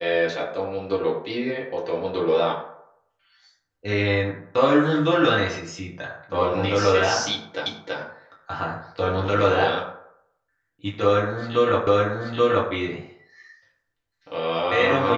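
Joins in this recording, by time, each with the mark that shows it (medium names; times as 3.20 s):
7.66 s: repeat of the last 0.33 s
11.87 s: repeat of the last 0.83 s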